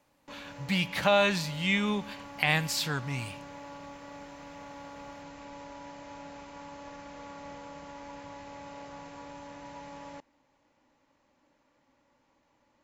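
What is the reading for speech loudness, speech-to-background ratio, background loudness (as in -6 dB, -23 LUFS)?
-28.0 LUFS, 17.5 dB, -45.5 LUFS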